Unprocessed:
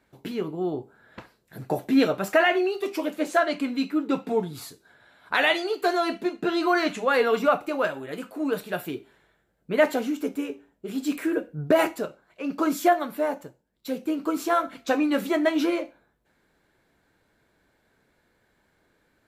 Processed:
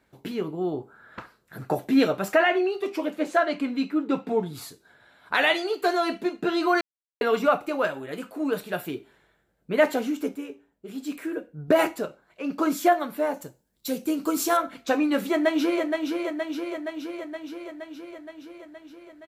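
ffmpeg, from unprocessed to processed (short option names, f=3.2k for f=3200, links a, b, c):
-filter_complex "[0:a]asettb=1/sr,asplit=3[a][b][c];[a]atrim=end=0.804[d];[b]atrim=start=0.8:end=1.75,asetpts=PTS-STARTPTS,afade=t=in:d=0.004:c=qsin,afade=t=out:st=0.946:d=0.004:c=qsin,equalizer=f=1.3k:t=o:w=0.7:g=9.5[e];[c]atrim=start=1.746[f];[d][e]acrossfade=d=0.004:c1=hsin:c2=qsin[g];[g][f]acrossfade=d=0.004:c1=qsin:c2=hsin,asettb=1/sr,asplit=3[h][i][j];[h]atrim=end=2.354[k];[i]atrim=start=2.35:end=4.46,asetpts=PTS-STARTPTS,afade=t=in:d=0.004:c=qsin,afade=t=out:st=2.106:d=0.004:c=qsin,highshelf=f=5k:g=-8[l];[j]atrim=start=4.456[m];[k][l]acrossfade=d=0.004:c1=hsin:c2=qsin[n];[n][m]acrossfade=d=0.004:c1=qsin:c2=hsin,asettb=1/sr,asplit=3[o][p][q];[o]atrim=end=13.344[r];[p]atrim=start=13.34:end=14.57,asetpts=PTS-STARTPTS,afade=t=in:d=0.004:c=qsin,afade=t=out:st=1.226:d=0.004:c=qsin,bass=f=250:g=3,treble=f=4k:g=11[s];[q]atrim=start=14.566[t];[r][s]acrossfade=d=0.004:c1=hsin:c2=qsin[u];[u][t]acrossfade=d=0.004:c1=qsin:c2=hsin,asplit=2[v][w];[w]afade=t=in:st=15.3:d=0.01,afade=t=out:st=15.83:d=0.01,aecho=0:1:470|940|1410|1880|2350|2820|3290|3760|4230|4700|5170|5640:0.595662|0.416964|0.291874|0.204312|0.143018|0.100113|0.0700791|0.0490553|0.0343387|0.0240371|0.016826|0.0117782[x];[v][x]amix=inputs=2:normalize=0,asplit=5[y][z][aa][ab][ac];[y]atrim=end=6.81,asetpts=PTS-STARTPTS,afade=t=out:st=6.806:d=0.004:c=hsin[ad];[z]atrim=start=6.81:end=7.21,asetpts=PTS-STARTPTS,volume=0[ae];[aa]atrim=start=7.21:end=10.352,asetpts=PTS-STARTPTS,afade=t=in:d=0.004:c=hsin[af];[ab]atrim=start=10.348:end=11.682,asetpts=PTS-STARTPTS,volume=-5.5dB[ag];[ac]atrim=start=11.678[ah];[ad][ae][af]concat=n=3:v=0:a=1[ai];[ai][ag]acrossfade=d=0.004:c1=hsin:c2=hsin[aj];[aj][ah]acrossfade=d=0.004:c1=hsin:c2=hsin"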